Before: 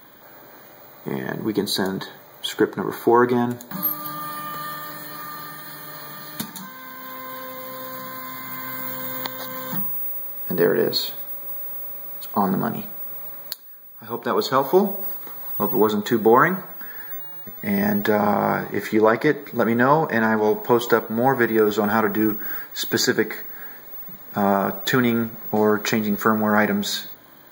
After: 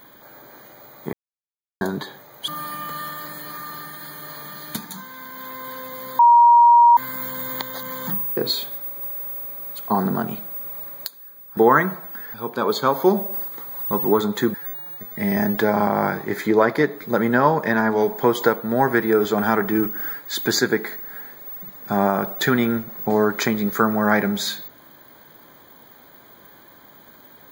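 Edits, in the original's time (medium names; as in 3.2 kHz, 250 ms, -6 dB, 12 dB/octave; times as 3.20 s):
1.13–1.81 s: mute
2.48–4.13 s: delete
7.84–8.62 s: bleep 948 Hz -8 dBFS
10.02–10.83 s: delete
16.23–17.00 s: move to 14.03 s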